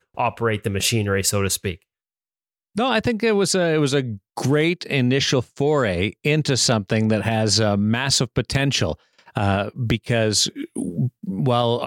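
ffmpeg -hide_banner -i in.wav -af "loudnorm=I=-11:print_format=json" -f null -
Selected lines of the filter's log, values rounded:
"input_i" : "-20.9",
"input_tp" : "-5.4",
"input_lra" : "2.7",
"input_thresh" : "-31.1",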